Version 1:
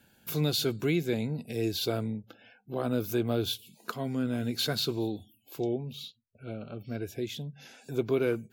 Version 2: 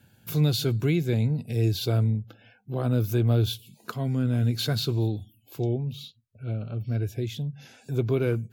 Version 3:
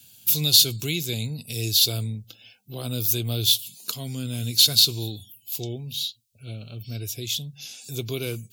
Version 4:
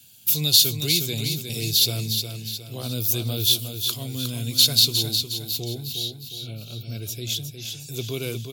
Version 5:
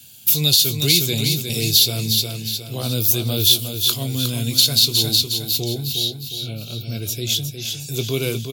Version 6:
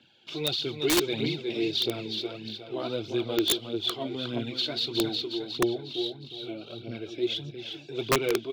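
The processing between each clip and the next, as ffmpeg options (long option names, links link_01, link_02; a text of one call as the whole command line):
ffmpeg -i in.wav -af "equalizer=frequency=110:width_type=o:width=1:gain=14" out.wav
ffmpeg -i in.wav -af "aexciter=amount=11.3:drive=4.5:freq=2600,volume=-6dB" out.wav
ffmpeg -i in.wav -af "aecho=1:1:360|720|1080|1440|1800:0.447|0.205|0.0945|0.0435|0.02" out.wav
ffmpeg -i in.wav -filter_complex "[0:a]alimiter=limit=-9dB:level=0:latency=1:release=246,asplit=2[link_01][link_02];[link_02]adelay=22,volume=-13dB[link_03];[link_01][link_03]amix=inputs=2:normalize=0,volume=6.5dB" out.wav
ffmpeg -i in.wav -af "highpass=290,equalizer=frequency=340:width_type=q:width=4:gain=8,equalizer=frequency=830:width_type=q:width=4:gain=3,equalizer=frequency=2600:width_type=q:width=4:gain=-5,lowpass=frequency=3000:width=0.5412,lowpass=frequency=3000:width=1.3066,aphaser=in_gain=1:out_gain=1:delay=3.5:decay=0.52:speed=1.6:type=triangular,aeval=exprs='(mod(3.98*val(0)+1,2)-1)/3.98':channel_layout=same,volume=-4dB" out.wav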